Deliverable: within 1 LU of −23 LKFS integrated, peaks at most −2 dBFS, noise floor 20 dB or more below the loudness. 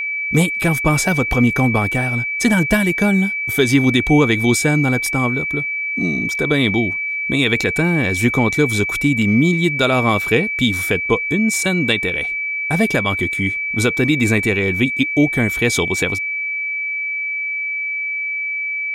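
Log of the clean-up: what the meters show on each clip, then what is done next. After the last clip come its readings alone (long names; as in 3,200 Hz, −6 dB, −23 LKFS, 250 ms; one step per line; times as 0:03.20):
interfering tone 2,300 Hz; level of the tone −20 dBFS; integrated loudness −17.0 LKFS; sample peak −3.0 dBFS; target loudness −23.0 LKFS
→ notch filter 2,300 Hz, Q 30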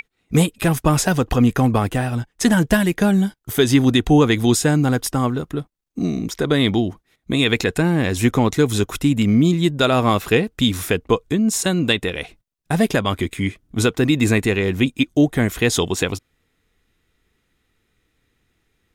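interfering tone none found; integrated loudness −18.5 LKFS; sample peak −4.0 dBFS; target loudness −23.0 LKFS
→ level −4.5 dB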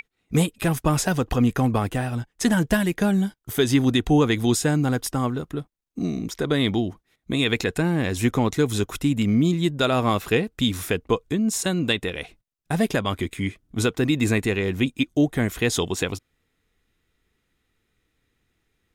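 integrated loudness −23.0 LKFS; sample peak −8.5 dBFS; background noise floor −74 dBFS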